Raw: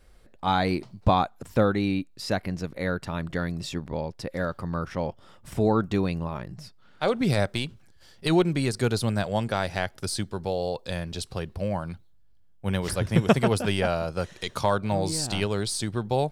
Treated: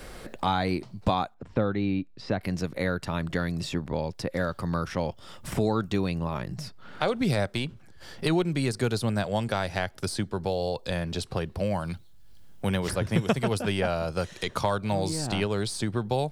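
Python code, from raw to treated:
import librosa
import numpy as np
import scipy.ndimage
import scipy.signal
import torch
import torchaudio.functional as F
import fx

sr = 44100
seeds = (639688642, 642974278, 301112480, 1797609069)

y = fx.spacing_loss(x, sr, db_at_10k=34, at=(1.34, 2.41))
y = fx.band_squash(y, sr, depth_pct=70)
y = y * 10.0 ** (-1.5 / 20.0)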